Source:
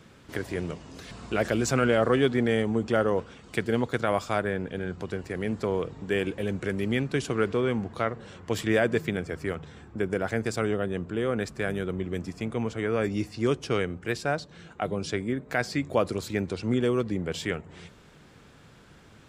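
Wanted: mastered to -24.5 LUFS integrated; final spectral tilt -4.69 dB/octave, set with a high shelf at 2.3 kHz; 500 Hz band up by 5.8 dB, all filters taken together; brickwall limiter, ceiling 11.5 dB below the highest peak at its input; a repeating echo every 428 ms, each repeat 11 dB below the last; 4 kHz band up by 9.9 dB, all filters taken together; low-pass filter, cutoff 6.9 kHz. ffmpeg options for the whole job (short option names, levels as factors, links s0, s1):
-af "lowpass=6900,equalizer=f=500:t=o:g=6.5,highshelf=f=2300:g=7.5,equalizer=f=4000:t=o:g=6.5,alimiter=limit=0.133:level=0:latency=1,aecho=1:1:428|856|1284:0.282|0.0789|0.0221,volume=1.68"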